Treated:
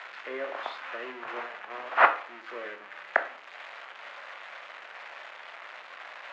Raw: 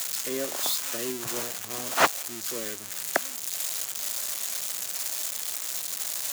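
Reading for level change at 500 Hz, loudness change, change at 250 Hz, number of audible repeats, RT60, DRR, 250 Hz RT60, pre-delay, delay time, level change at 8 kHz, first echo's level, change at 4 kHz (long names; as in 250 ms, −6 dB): −1.5 dB, −2.0 dB, −10.0 dB, no echo audible, 0.45 s, 8.0 dB, 0.45 s, 16 ms, no echo audible, below −35 dB, no echo audible, −13.0 dB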